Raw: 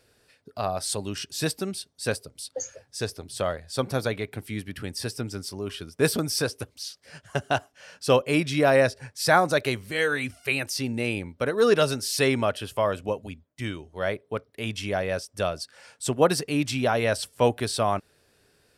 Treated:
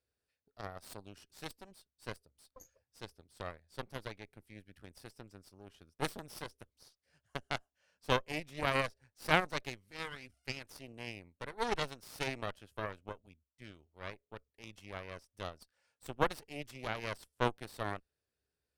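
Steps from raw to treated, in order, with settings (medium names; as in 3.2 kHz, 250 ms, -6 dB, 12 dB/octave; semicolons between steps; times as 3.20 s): peaking EQ 66 Hz +14.5 dB 0.4 oct; Chebyshev shaper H 3 -10 dB, 4 -17 dB, 5 -45 dB, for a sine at -4 dBFS; trim -5 dB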